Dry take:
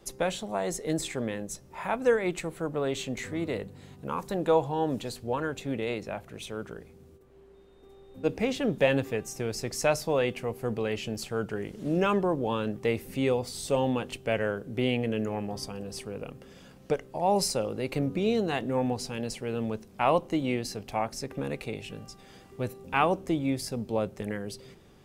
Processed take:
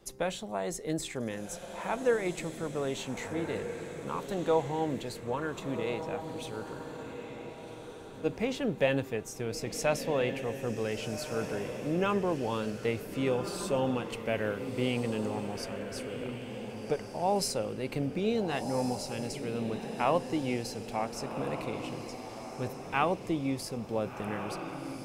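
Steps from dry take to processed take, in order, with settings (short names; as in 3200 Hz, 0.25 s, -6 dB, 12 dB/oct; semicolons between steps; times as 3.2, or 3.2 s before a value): diffused feedback echo 1.476 s, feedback 41%, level -8 dB; gain -3.5 dB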